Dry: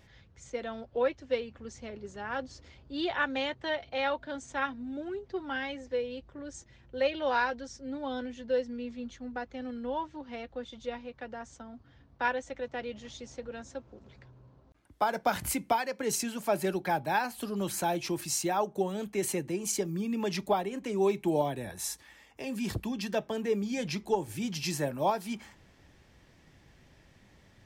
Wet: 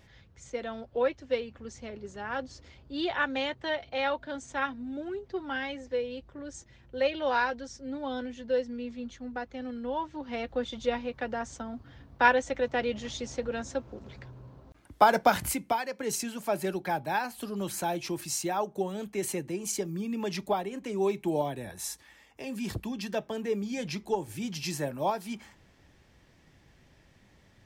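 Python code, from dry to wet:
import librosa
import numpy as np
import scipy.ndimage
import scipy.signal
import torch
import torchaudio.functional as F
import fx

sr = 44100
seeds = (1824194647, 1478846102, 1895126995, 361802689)

y = fx.gain(x, sr, db=fx.line((9.95, 1.0), (10.53, 8.0), (15.16, 8.0), (15.6, -1.0)))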